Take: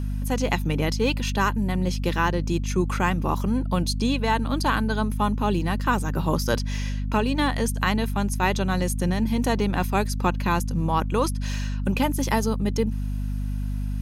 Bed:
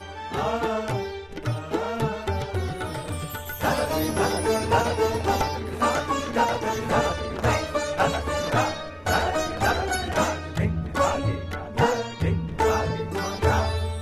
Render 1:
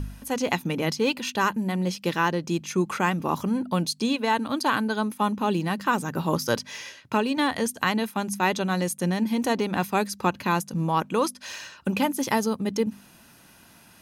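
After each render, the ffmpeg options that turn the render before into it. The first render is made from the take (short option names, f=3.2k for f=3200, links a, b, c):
-af "bandreject=f=50:t=h:w=4,bandreject=f=100:t=h:w=4,bandreject=f=150:t=h:w=4,bandreject=f=200:t=h:w=4,bandreject=f=250:t=h:w=4"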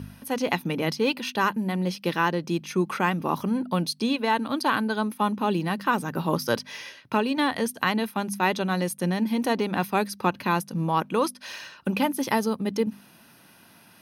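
-af "highpass=110,equalizer=f=7.2k:w=4.3:g=-14.5"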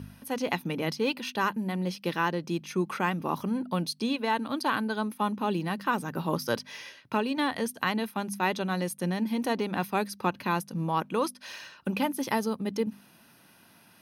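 -af "volume=-4dB"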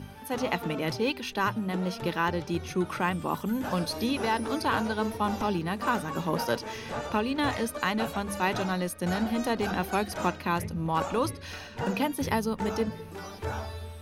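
-filter_complex "[1:a]volume=-12.5dB[a];[0:a][a]amix=inputs=2:normalize=0"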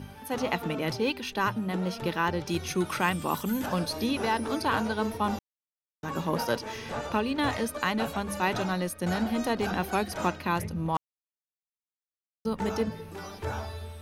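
-filter_complex "[0:a]asettb=1/sr,asplit=3[a][b][c];[a]atrim=end=2.464[d];[b]atrim=start=2.46:end=3.66,asetpts=PTS-STARTPTS,afade=t=in:d=0.004:c=qsin,afade=t=out:st=1.196:d=0.004:c=qsin,highshelf=f=2.4k:g=8.5[e];[c]atrim=start=3.656[f];[d][e]acrossfade=d=0.004:c1=hsin:c2=qsin[g];[g][f]acrossfade=d=0.004:c1=qsin:c2=hsin,asplit=5[h][i][j][k][l];[h]atrim=end=5.39,asetpts=PTS-STARTPTS,afade=t=out:st=5.386:d=0.004:c=hsin[m];[i]atrim=start=5.39:end=6.03,asetpts=PTS-STARTPTS,volume=0[n];[j]atrim=start=6.03:end=10.97,asetpts=PTS-STARTPTS,afade=t=in:d=0.004:c=hsin,afade=t=out:st=4.936:d=0.004:c=hsin[o];[k]atrim=start=10.97:end=12.45,asetpts=PTS-STARTPTS,volume=0[p];[l]atrim=start=12.45,asetpts=PTS-STARTPTS,afade=t=in:d=0.004:c=hsin[q];[m][n][o][p][q]concat=n=5:v=0:a=1"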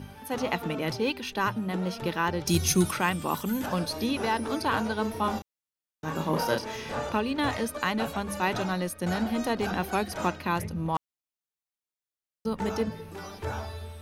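-filter_complex "[0:a]asplit=3[a][b][c];[a]afade=t=out:st=2.45:d=0.02[d];[b]bass=f=250:g=10,treble=f=4k:g=14,afade=t=in:st=2.45:d=0.02,afade=t=out:st=2.9:d=0.02[e];[c]afade=t=in:st=2.9:d=0.02[f];[d][e][f]amix=inputs=3:normalize=0,asettb=1/sr,asplit=3[g][h][i];[g]atrim=end=5.134[j];[h]atrim=start=5.13:end=7.11,asetpts=PTS-STARTPTS,afade=t=in:d=0.004:c=qsin,afade=t=out:st=1.976:d=0.004:c=qsin,asplit=2[k][l];[l]adelay=32,volume=-4dB[m];[k][m]amix=inputs=2:normalize=0,atrim=end_sample=87318[n];[i]atrim=start=7.106[o];[j][n]acrossfade=d=0.004:c1=hsin:c2=qsin[p];[p][o]acrossfade=d=0.004:c1=qsin:c2=hsin"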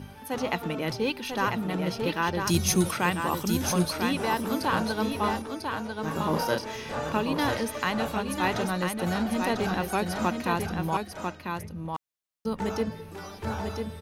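-af "aecho=1:1:996:0.562"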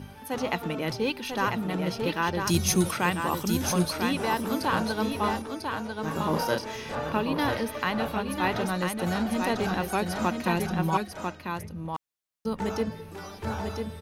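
-filter_complex "[0:a]asettb=1/sr,asplit=3[a][b][c];[a]atrim=end=6.954[d];[b]atrim=start=6.95:end=8.66,asetpts=PTS-STARTPTS,afade=t=in:d=0.004:c=qsin,afade=t=out:st=1.706:d=0.004:c=qsin,equalizer=f=7.3k:t=o:w=0.69:g=-10[e];[c]atrim=start=8.656[f];[d][e]acrossfade=d=0.004:c1=hsin:c2=qsin[g];[g][f]acrossfade=d=0.004:c1=qsin:c2=hsin,asettb=1/sr,asplit=3[h][i][j];[h]atrim=end=10.444[k];[i]atrim=start=10.44:end=11.07,asetpts=PTS-STARTPTS,afade=t=in:d=0.004:c=qsin,afade=t=out:st=0.626:d=0.004:c=qsin,aecho=1:1:5.4:0.65,atrim=end_sample=27783[l];[j]atrim=start=11.066[m];[k][l]acrossfade=d=0.004:c1=hsin:c2=qsin[n];[n][m]acrossfade=d=0.004:c1=qsin:c2=hsin"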